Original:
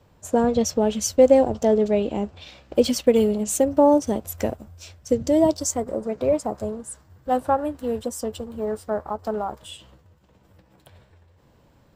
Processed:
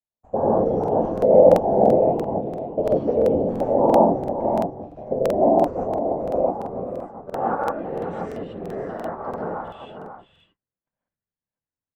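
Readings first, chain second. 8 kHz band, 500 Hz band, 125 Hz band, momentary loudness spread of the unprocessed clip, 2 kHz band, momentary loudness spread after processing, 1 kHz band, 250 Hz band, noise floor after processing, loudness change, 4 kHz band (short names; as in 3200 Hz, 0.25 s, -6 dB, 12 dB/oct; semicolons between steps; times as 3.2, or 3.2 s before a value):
under -20 dB, +2.0 dB, +4.0 dB, 14 LU, -1.0 dB, 16 LU, +4.5 dB, -2.0 dB, under -85 dBFS, +1.5 dB, under -10 dB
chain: tracing distortion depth 0.083 ms; gate -44 dBFS, range -40 dB; whisperiser; echo 0.542 s -9 dB; non-linear reverb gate 0.18 s rising, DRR -5.5 dB; low-pass sweep 810 Hz -> 1900 Hz, 6.17–8.15; crackling interface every 0.34 s, samples 2048, repeat, from 0.79; gain -10 dB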